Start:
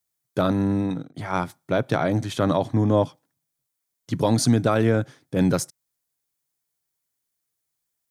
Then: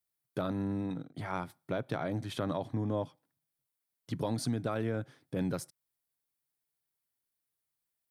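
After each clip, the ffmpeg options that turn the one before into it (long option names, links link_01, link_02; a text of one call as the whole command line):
ffmpeg -i in.wav -af "equalizer=frequency=6600:width_type=o:width=0.54:gain=-7,acompressor=threshold=-29dB:ratio=2,volume=-6dB" out.wav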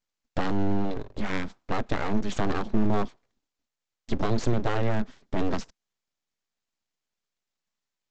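ffmpeg -i in.wav -af "equalizer=frequency=91:width=1.6:gain=11.5,aresample=16000,aeval=exprs='abs(val(0))':channel_layout=same,aresample=44100,volume=7.5dB" out.wav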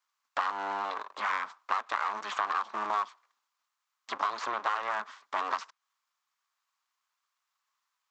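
ffmpeg -i in.wav -filter_complex "[0:a]highpass=frequency=1100:width_type=q:width=4.7,acrossover=split=2100|4300[link_01][link_02][link_03];[link_01]acompressor=threshold=-32dB:ratio=4[link_04];[link_02]acompressor=threshold=-47dB:ratio=4[link_05];[link_03]acompressor=threshold=-58dB:ratio=4[link_06];[link_04][link_05][link_06]amix=inputs=3:normalize=0,volume=3.5dB" out.wav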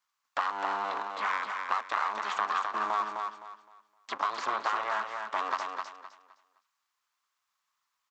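ffmpeg -i in.wav -af "aecho=1:1:258|516|774|1032:0.562|0.152|0.041|0.0111" out.wav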